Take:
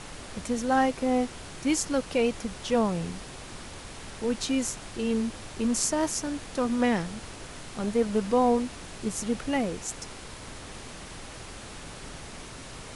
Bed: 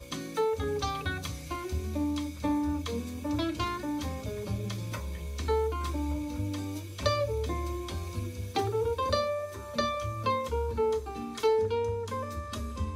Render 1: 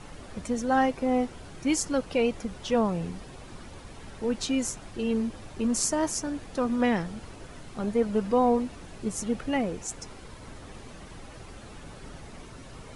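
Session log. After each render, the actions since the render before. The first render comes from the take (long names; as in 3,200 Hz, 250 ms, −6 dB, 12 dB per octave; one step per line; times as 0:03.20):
broadband denoise 9 dB, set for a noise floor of −43 dBFS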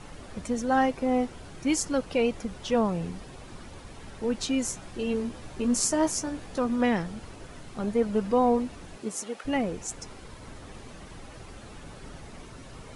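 0:04.68–0:06.59: double-tracking delay 16 ms −6 dB
0:08.96–0:09.44: high-pass filter 170 Hz → 670 Hz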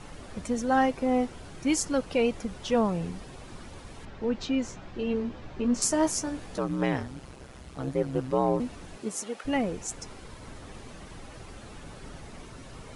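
0:04.05–0:05.82: high-frequency loss of the air 150 metres
0:06.57–0:08.60: ring modulation 65 Hz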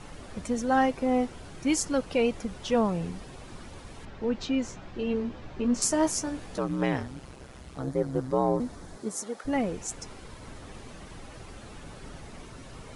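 0:07.79–0:09.58: parametric band 2,700 Hz −11.5 dB 0.5 octaves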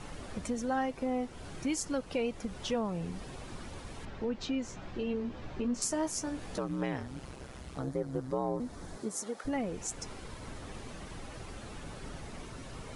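downward compressor 2 to 1, threshold −35 dBFS, peak gain reduction 9.5 dB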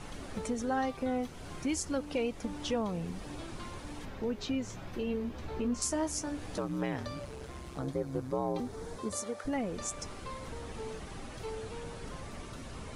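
mix in bed −16 dB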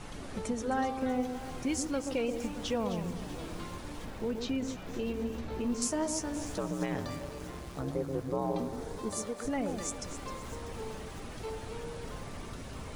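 delay that swaps between a low-pass and a high-pass 130 ms, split 1,000 Hz, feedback 58%, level −6 dB
feedback echo at a low word length 644 ms, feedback 55%, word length 7 bits, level −15 dB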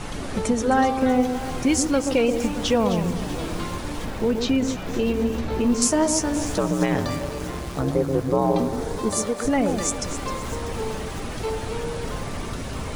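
level +12 dB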